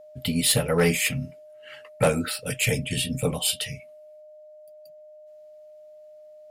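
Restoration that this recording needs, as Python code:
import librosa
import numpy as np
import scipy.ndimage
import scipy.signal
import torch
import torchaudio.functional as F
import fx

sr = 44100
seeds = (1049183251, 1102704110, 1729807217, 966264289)

y = fx.fix_declip(x, sr, threshold_db=-13.0)
y = fx.notch(y, sr, hz=610.0, q=30.0)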